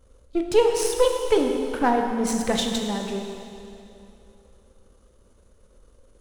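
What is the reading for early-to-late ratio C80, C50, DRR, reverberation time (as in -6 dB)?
5.0 dB, 4.0 dB, 2.5 dB, 2.8 s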